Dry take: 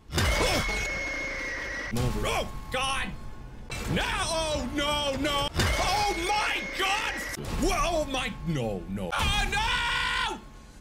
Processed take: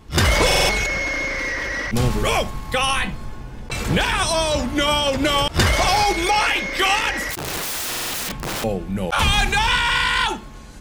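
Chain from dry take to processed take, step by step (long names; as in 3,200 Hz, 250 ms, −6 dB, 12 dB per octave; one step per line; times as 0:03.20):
0:07.30–0:08.64: wrap-around overflow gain 30 dB
buffer that repeats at 0:00.46/0:07.88, samples 2,048, times 4
level +8.5 dB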